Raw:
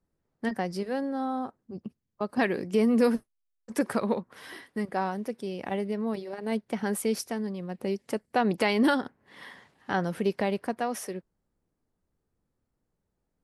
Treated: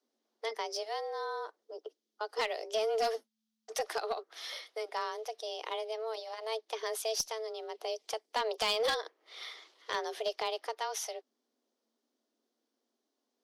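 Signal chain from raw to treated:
frequency shifter +220 Hz
low-shelf EQ 220 Hz −11.5 dB
in parallel at −1 dB: downward compressor 6 to 1, threshold −38 dBFS, peak gain reduction 17 dB
on the sum: flat-topped bell 4,400 Hz +11.5 dB 1.3 octaves
asymmetric clip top −18 dBFS
level −8 dB

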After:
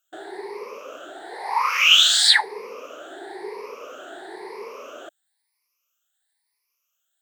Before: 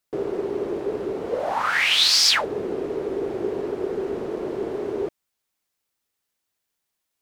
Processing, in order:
rippled gain that drifts along the octave scale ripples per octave 0.86, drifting +1 Hz, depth 21 dB
high-pass filter 940 Hz 12 dB per octave
level −1 dB

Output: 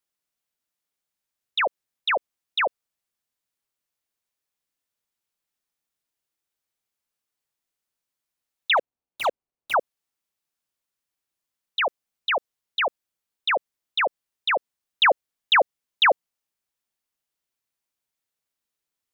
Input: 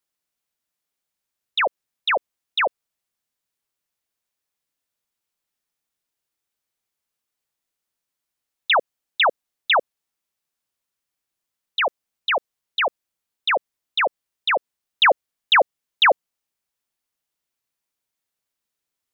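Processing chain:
0:08.77–0:09.74: running median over 25 samples
level −2.5 dB

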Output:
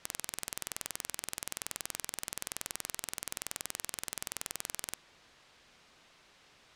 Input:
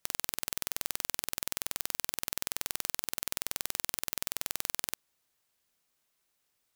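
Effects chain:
mu-law and A-law mismatch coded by mu
low-pass filter 4,100 Hz 12 dB per octave
wave folding −23 dBFS
level +11.5 dB

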